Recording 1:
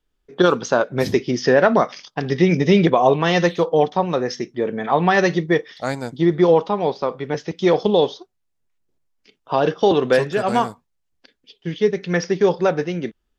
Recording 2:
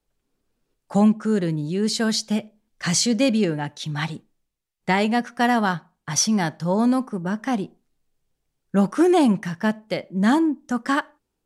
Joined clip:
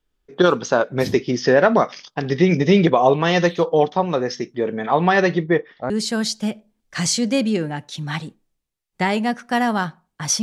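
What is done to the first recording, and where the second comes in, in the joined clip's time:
recording 1
0:05.13–0:05.90: low-pass filter 6,100 Hz → 1,100 Hz
0:05.90: continue with recording 2 from 0:01.78

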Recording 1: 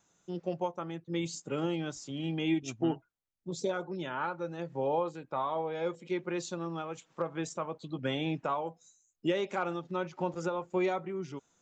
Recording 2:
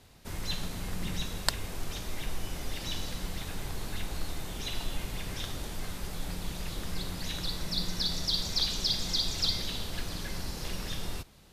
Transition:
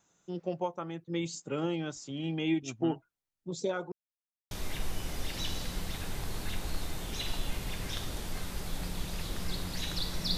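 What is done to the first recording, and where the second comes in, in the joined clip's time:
recording 1
0:03.92–0:04.51: silence
0:04.51: continue with recording 2 from 0:01.98

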